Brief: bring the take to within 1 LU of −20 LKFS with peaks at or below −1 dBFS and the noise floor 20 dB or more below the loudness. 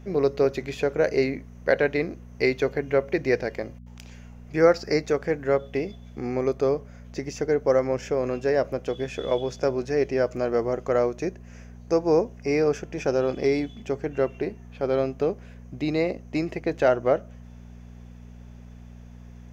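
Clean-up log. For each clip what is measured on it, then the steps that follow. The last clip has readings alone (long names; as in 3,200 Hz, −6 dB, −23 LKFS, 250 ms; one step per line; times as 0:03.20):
mains hum 60 Hz; hum harmonics up to 240 Hz; level of the hum −42 dBFS; integrated loudness −25.5 LKFS; sample peak −7.0 dBFS; target loudness −20.0 LKFS
→ hum removal 60 Hz, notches 4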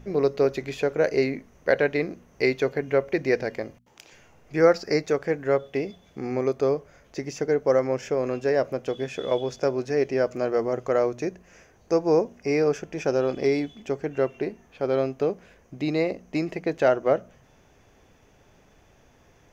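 mains hum none found; integrated loudness −25.5 LKFS; sample peak −7.0 dBFS; target loudness −20.0 LKFS
→ level +5.5 dB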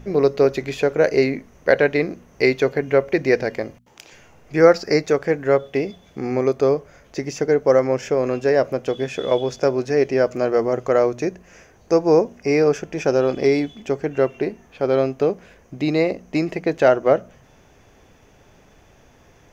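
integrated loudness −20.0 LKFS; sample peak −1.5 dBFS; background noise floor −52 dBFS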